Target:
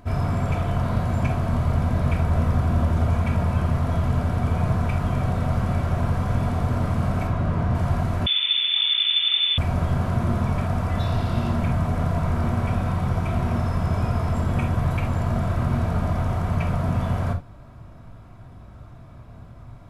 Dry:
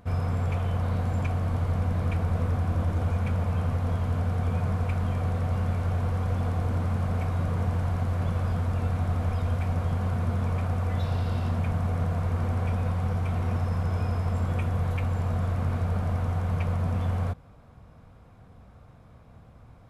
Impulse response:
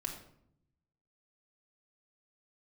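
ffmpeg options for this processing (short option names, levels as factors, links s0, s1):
-filter_complex "[0:a]asettb=1/sr,asplit=3[s0][s1][s2];[s0]atrim=end=7.274[s3];[s1]atrim=start=7.27:end=7.75,asetpts=PTS-STARTPTS,afade=t=in:d=0.004:c=qsin,afade=t=out:st=0.476:d=0.004:c=qsin,aemphasis=mode=reproduction:type=50kf[s4];[s2]atrim=start=7.746[s5];[s3][s4]acrossfade=d=0.004:c1=hsin:c2=qsin[s6];[s6][s5]acrossfade=d=0.004:c1=qsin:c2=hsin[s7];[1:a]atrim=start_sample=2205,afade=t=out:st=0.13:d=0.01,atrim=end_sample=6174[s8];[s7][s8]afir=irnorm=-1:irlink=0,asettb=1/sr,asplit=3[s9][s10][s11];[s9]atrim=end=8.264[s12];[s10]atrim=start=8.26:end=9.58,asetpts=PTS-STARTPTS,afade=t=in:d=0.004:c=qsin,afade=t=out:st=1.316:d=0.004:c=qsin,lowpass=f=3100:t=q:w=0.5098,lowpass=f=3100:t=q:w=0.6013,lowpass=f=3100:t=q:w=0.9,lowpass=f=3100:t=q:w=2.563,afreqshift=-3600[s13];[s11]atrim=start=9.576[s14];[s12][s13]acrossfade=d=0.004:c1=hsin:c2=qsin[s15];[s15][s14]acrossfade=d=0.004:c1=qsin:c2=hsin,volume=2.11"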